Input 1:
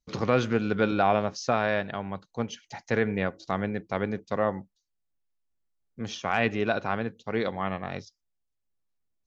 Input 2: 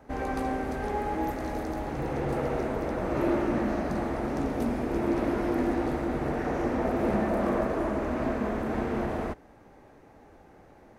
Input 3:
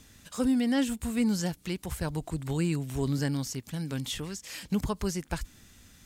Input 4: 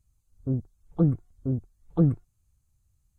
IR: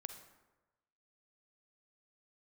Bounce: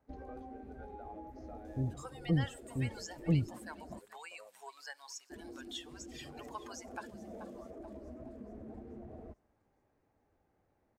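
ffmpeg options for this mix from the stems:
-filter_complex "[0:a]highpass=350,acompressor=threshold=-43dB:ratio=2,volume=-15dB[a];[1:a]acompressor=threshold=-32dB:ratio=6,volume=-9dB,asplit=3[b][c][d];[b]atrim=end=3.99,asetpts=PTS-STARTPTS,afade=t=out:st=3.986:d=0.004:c=hsin[e];[c]atrim=start=3.99:end=5.3,asetpts=PTS-STARTPTS,volume=0[f];[d]atrim=start=5.3,asetpts=PTS-STARTPTS,afade=t=in:d=0.004:c=hsin[g];[e][f][g]concat=n=3:v=0:a=1,asplit=2[h][i];[i]volume=-7dB[j];[2:a]highpass=f=730:w=0.5412,highpass=f=730:w=1.3066,adelay=1650,volume=1dB,asplit=3[k][l][m];[l]volume=-7.5dB[n];[m]volume=-15dB[o];[3:a]adelay=1300,volume=-9.5dB[p];[h][k]amix=inputs=2:normalize=0,acompressor=threshold=-48dB:ratio=4,volume=0dB[q];[4:a]atrim=start_sample=2205[r];[j][n]amix=inputs=2:normalize=0[s];[s][r]afir=irnorm=-1:irlink=0[t];[o]aecho=0:1:431|862|1293|1724|2155|2586|3017|3448:1|0.54|0.292|0.157|0.085|0.0459|0.0248|0.0134[u];[a][p][q][t][u]amix=inputs=5:normalize=0,afftdn=nr=16:nf=-41,equalizer=f=87:w=1.3:g=5.5"

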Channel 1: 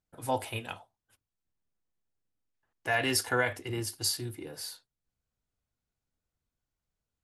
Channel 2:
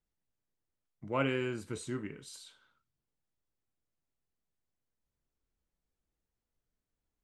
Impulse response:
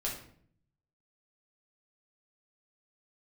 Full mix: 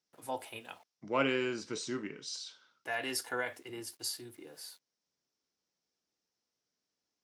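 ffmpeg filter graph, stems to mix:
-filter_complex "[0:a]aeval=exprs='val(0)*gte(abs(val(0)),0.00211)':c=same,volume=-7.5dB[a];[1:a]acontrast=45,lowpass=f=5.5k:t=q:w=4.8,volume=-4dB[b];[a][b]amix=inputs=2:normalize=0,highpass=220"

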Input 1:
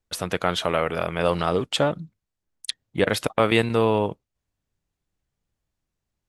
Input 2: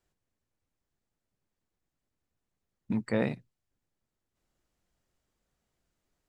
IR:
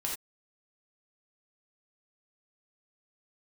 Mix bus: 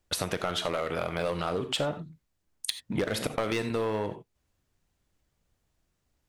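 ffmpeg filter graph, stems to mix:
-filter_complex "[0:a]asoftclip=type=hard:threshold=-14.5dB,volume=2dB,asplit=2[a][b];[b]volume=-8.5dB[c];[1:a]volume=-2.5dB[d];[2:a]atrim=start_sample=2205[e];[c][e]afir=irnorm=-1:irlink=0[f];[a][d][f]amix=inputs=3:normalize=0,acompressor=threshold=-27dB:ratio=6"

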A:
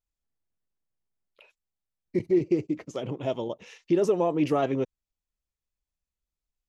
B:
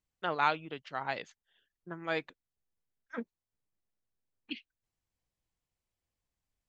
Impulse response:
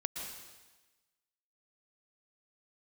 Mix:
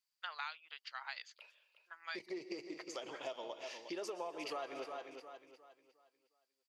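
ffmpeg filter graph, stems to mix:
-filter_complex "[0:a]volume=-5dB,asplit=4[a][b][c][d];[b]volume=-7.5dB[e];[c]volume=-8.5dB[f];[1:a]highpass=1.3k,volume=-2dB[g];[d]apad=whole_len=294804[h];[g][h]sidechaincompress=threshold=-36dB:ratio=8:attack=16:release=390[i];[2:a]atrim=start_sample=2205[j];[e][j]afir=irnorm=-1:irlink=0[k];[f]aecho=0:1:358|716|1074|1432|1790:1|0.34|0.116|0.0393|0.0134[l];[a][i][k][l]amix=inputs=4:normalize=0,highpass=800,equalizer=f=4.7k:t=o:w=0.21:g=14,acompressor=threshold=-40dB:ratio=5"

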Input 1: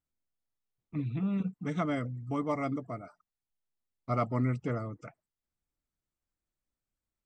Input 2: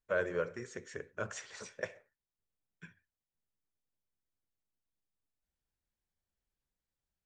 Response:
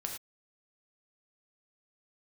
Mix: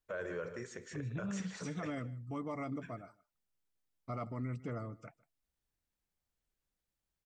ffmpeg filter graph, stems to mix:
-filter_complex "[0:a]volume=-5.5dB,asplit=2[a][b];[b]volume=-23dB[c];[1:a]volume=0dB,asplit=2[d][e];[e]volume=-17dB[f];[c][f]amix=inputs=2:normalize=0,aecho=0:1:153:1[g];[a][d][g]amix=inputs=3:normalize=0,alimiter=level_in=7.5dB:limit=-24dB:level=0:latency=1:release=36,volume=-7.5dB"

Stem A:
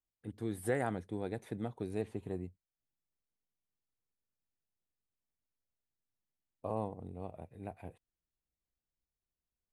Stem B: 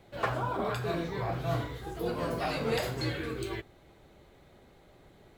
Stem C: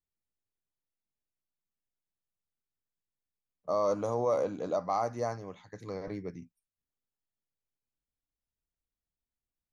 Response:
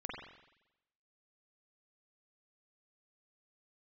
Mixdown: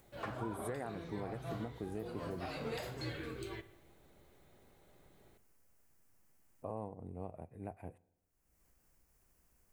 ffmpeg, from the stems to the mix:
-filter_complex "[0:a]equalizer=f=3.7k:t=o:w=0.74:g=-13,acompressor=mode=upward:threshold=-53dB:ratio=2.5,volume=0dB,asplit=2[a][b];[b]volume=-22dB[c];[1:a]volume=-9.5dB,asplit=2[d][e];[e]volume=-11.5dB[f];[3:a]atrim=start_sample=2205[g];[c][f]amix=inputs=2:normalize=0[h];[h][g]afir=irnorm=-1:irlink=0[i];[a][d][i]amix=inputs=3:normalize=0,alimiter=level_in=6dB:limit=-24dB:level=0:latency=1:release=366,volume=-6dB"

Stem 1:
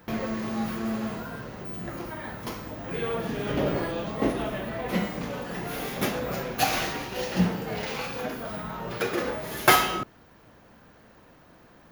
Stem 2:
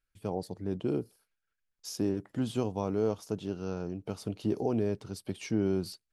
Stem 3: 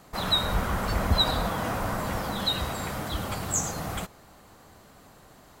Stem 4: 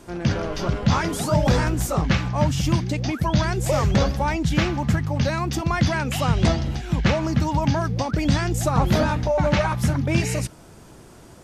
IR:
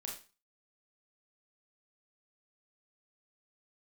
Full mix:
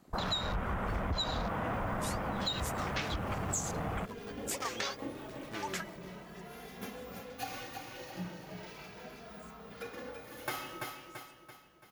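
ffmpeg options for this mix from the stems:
-filter_complex "[0:a]asplit=2[a][b];[b]adelay=2.6,afreqshift=0.37[c];[a][c]amix=inputs=2:normalize=1,adelay=800,volume=-13.5dB,asplit=2[d][e];[e]volume=-6.5dB[f];[1:a]lowshelf=f=370:t=q:w=1.5:g=-6.5,acrusher=samples=19:mix=1:aa=0.000001:lfo=1:lforange=30.4:lforate=3.3,volume=-11.5dB,asplit=3[g][h][i];[h]volume=-11dB[j];[2:a]asoftclip=type=tanh:threshold=-16dB,afwtdn=0.0112,volume=3dB[k];[3:a]highpass=1.3k,adelay=850,volume=-0.5dB[l];[i]apad=whole_len=541574[m];[l][m]sidechaingate=range=-33dB:threshold=-44dB:ratio=16:detection=peak[n];[f][j]amix=inputs=2:normalize=0,aecho=0:1:336|672|1008|1344|1680|2016:1|0.46|0.212|0.0973|0.0448|0.0206[o];[d][g][k][n][o]amix=inputs=5:normalize=0,acompressor=threshold=-33dB:ratio=4"

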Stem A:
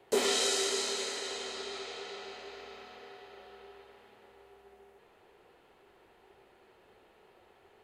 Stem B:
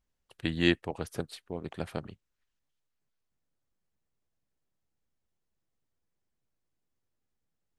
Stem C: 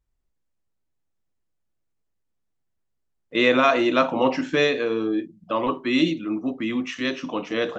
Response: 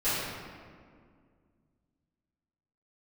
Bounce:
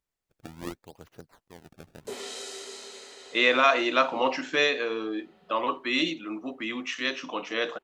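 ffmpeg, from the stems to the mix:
-filter_complex "[0:a]adelay=1950,volume=-9.5dB[a];[1:a]acrusher=samples=25:mix=1:aa=0.000001:lfo=1:lforange=40:lforate=0.69,volume=-12.5dB[b];[2:a]highpass=f=850:p=1,volume=0.5dB[c];[a][b][c]amix=inputs=3:normalize=0"

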